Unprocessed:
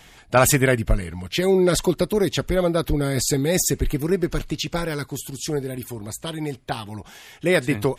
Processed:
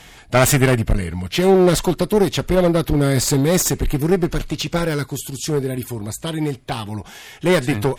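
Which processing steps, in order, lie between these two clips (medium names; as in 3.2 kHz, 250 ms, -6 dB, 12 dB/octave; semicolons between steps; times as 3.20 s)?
one-sided clip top -22.5 dBFS; harmonic-percussive split harmonic +4 dB; trim +3 dB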